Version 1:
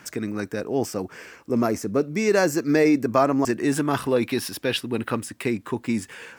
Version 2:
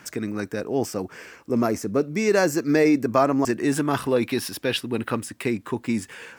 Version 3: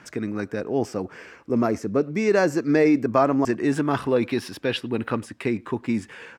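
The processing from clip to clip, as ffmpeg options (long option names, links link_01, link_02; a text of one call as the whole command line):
ffmpeg -i in.wav -af anull out.wav
ffmpeg -i in.wav -filter_complex "[0:a]aemphasis=mode=reproduction:type=50fm,asplit=2[link_01][link_02];[link_02]adelay=100,highpass=300,lowpass=3400,asoftclip=type=hard:threshold=-15dB,volume=-26dB[link_03];[link_01][link_03]amix=inputs=2:normalize=0" out.wav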